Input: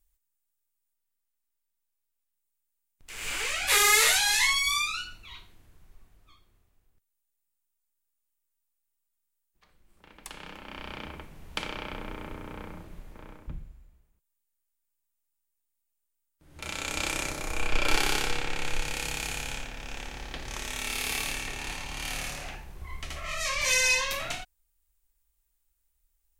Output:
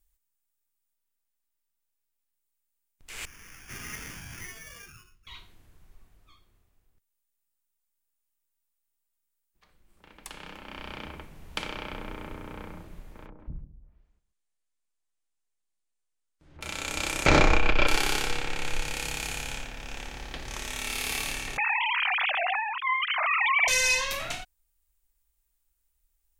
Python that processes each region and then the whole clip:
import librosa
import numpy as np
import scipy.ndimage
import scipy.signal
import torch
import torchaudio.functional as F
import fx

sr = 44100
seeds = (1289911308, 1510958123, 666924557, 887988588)

y = fx.chain(x, sr, fx.sample_hold(seeds[0], rate_hz=4000.0, jitter_pct=0),
    fx.tone_stack(knobs='6-0-2'), at=(3.25, 5.27))
y = fx.chain(y, sr, fx.lowpass(hz=7600.0, slope=12),
    fx.env_lowpass_down(base_hz=360.0, full_db=-41.0),
    fx.echo_single(ms=135, db=-12.0), at=(13.26, 16.61))
y = fx.chain(y, sr, fx.air_absorb(metres=170.0),
    fx.env_flatten(amount_pct=100), at=(17.26, 17.87))
y = fx.chain(y, sr, fx.sine_speech(),
    fx.hum_notches(base_hz=50, count=9),
    fx.env_flatten(amount_pct=70), at=(21.57, 23.68))